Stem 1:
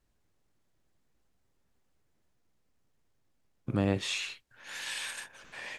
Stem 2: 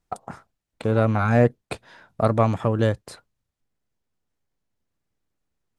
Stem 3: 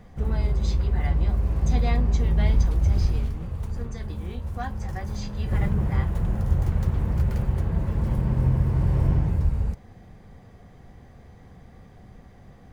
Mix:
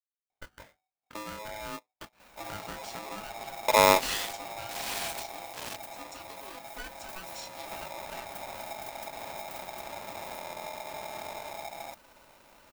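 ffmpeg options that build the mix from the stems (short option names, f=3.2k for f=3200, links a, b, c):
-filter_complex "[0:a]lowshelf=f=440:g=9.5,acrusher=bits=5:mix=0:aa=0.000001,volume=0.5dB[a];[1:a]lowpass=3k,flanger=delay=17:depth=5.6:speed=0.56,adelay=300,volume=-10dB[b];[2:a]aemphasis=mode=production:type=bsi,adelay=2200,volume=-4dB[c];[b][c]amix=inputs=2:normalize=0,acompressor=threshold=-37dB:ratio=6,volume=0dB[d];[a][d]amix=inputs=2:normalize=0,aeval=exprs='val(0)*sgn(sin(2*PI*750*n/s))':c=same"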